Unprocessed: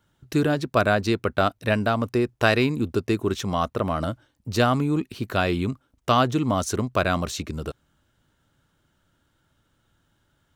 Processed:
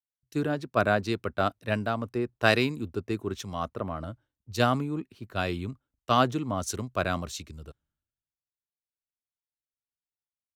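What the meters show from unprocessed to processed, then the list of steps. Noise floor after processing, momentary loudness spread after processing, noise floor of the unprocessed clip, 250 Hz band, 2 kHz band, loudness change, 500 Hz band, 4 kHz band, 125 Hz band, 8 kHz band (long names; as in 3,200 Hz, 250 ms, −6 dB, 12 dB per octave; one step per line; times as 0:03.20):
below −85 dBFS, 14 LU, −69 dBFS, −6.5 dB, −4.0 dB, −5.0 dB, −5.5 dB, −4.0 dB, −6.5 dB, −4.5 dB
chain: multiband upward and downward expander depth 100%
level −6.5 dB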